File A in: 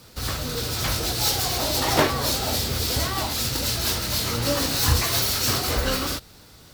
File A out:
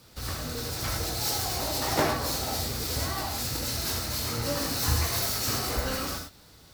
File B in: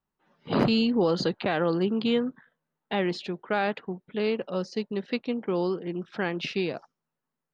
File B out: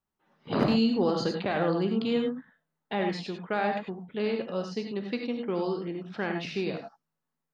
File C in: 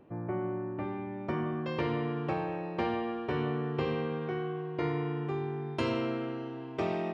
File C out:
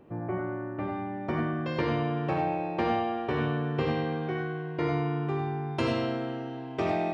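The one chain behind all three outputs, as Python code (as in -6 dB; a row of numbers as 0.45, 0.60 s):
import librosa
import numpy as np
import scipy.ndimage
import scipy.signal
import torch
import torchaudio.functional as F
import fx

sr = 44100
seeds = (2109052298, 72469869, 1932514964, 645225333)

y = fx.dynamic_eq(x, sr, hz=3300.0, q=1.9, threshold_db=-40.0, ratio=4.0, max_db=-5)
y = fx.rev_gated(y, sr, seeds[0], gate_ms=120, shape='rising', drr_db=3.5)
y = y * 10.0 ** (-30 / 20.0) / np.sqrt(np.mean(np.square(y)))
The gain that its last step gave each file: -6.5, -3.0, +2.5 dB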